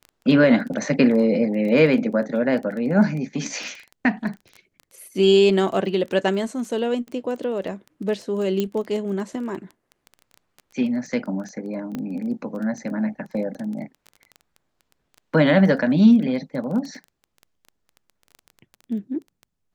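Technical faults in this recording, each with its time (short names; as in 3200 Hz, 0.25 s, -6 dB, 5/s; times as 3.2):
crackle 13/s -30 dBFS
8.6 pop -11 dBFS
11.95 pop -17 dBFS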